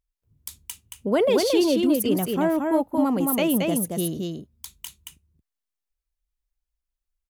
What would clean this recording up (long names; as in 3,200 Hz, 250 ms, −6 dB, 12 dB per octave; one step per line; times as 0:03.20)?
echo removal 225 ms −3.5 dB